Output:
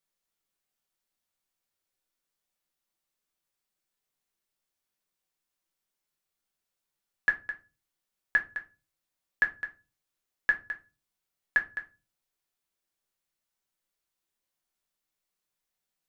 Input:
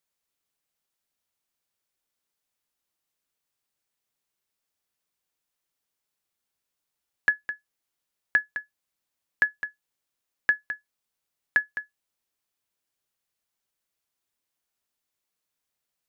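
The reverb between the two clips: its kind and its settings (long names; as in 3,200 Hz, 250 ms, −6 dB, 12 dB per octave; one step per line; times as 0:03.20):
rectangular room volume 120 cubic metres, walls furnished, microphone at 1.1 metres
level −4 dB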